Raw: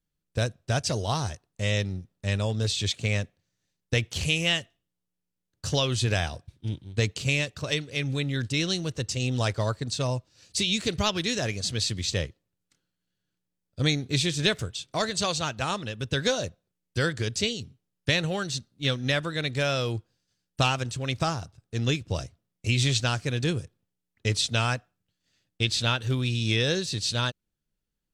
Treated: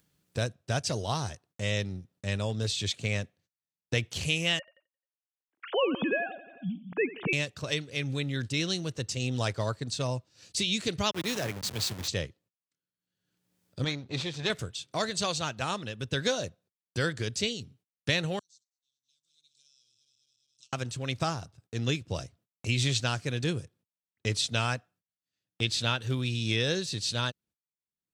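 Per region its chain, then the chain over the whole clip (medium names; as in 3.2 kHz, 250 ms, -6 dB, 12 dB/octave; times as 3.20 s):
4.59–7.33 s: formants replaced by sine waves + low-pass 2.9 kHz + feedback delay 88 ms, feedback 58%, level -17 dB
11.11–12.08 s: send-on-delta sampling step -29 dBFS + three bands expanded up and down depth 40%
13.84–14.50 s: partial rectifier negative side -12 dB + low-pass 4.8 kHz
18.39–20.73 s: backward echo that repeats 104 ms, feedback 74%, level -10 dB + inverse Chebyshev high-pass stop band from 2 kHz, stop band 60 dB + tape spacing loss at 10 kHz 31 dB
whole clip: gate -57 dBFS, range -31 dB; high-pass 89 Hz; upward compressor, threshold -34 dBFS; trim -3 dB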